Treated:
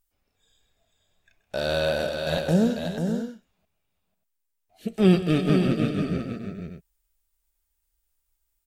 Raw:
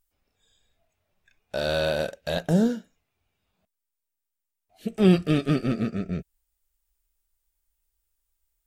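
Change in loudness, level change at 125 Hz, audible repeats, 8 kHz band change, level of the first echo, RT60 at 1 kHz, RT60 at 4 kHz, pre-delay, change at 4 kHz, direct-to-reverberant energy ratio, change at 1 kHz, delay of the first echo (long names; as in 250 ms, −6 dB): +0.5 dB, +1.5 dB, 4, can't be measured, −14.0 dB, no reverb audible, no reverb audible, no reverb audible, +1.5 dB, no reverb audible, +1.5 dB, 129 ms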